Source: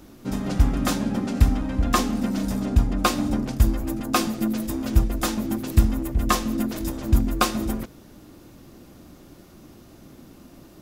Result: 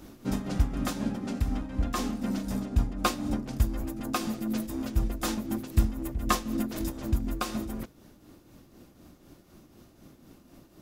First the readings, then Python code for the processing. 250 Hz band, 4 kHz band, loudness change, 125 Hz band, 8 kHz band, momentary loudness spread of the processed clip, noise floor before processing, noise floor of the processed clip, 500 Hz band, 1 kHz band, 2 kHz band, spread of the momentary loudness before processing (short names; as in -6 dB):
-6.5 dB, -7.5 dB, -7.0 dB, -7.5 dB, -7.0 dB, 5 LU, -49 dBFS, -57 dBFS, -7.0 dB, -7.0 dB, -7.0 dB, 6 LU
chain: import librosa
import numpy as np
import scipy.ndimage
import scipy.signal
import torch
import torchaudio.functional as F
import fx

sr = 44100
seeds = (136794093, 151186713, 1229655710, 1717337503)

y = fx.rider(x, sr, range_db=5, speed_s=0.5)
y = fx.tremolo_shape(y, sr, shape='triangle', hz=4.0, depth_pct=60)
y = y * librosa.db_to_amplitude(-4.0)